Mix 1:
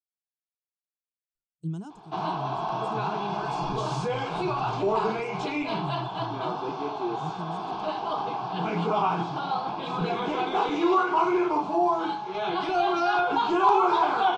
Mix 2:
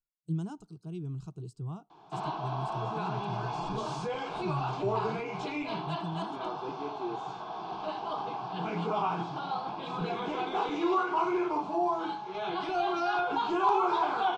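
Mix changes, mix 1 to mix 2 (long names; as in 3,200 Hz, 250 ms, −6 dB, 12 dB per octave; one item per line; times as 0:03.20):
speech: entry −1.35 s
background −5.5 dB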